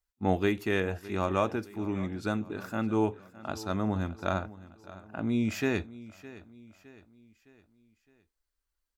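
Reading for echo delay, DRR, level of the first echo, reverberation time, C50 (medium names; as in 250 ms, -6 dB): 612 ms, no reverb, -18.0 dB, no reverb, no reverb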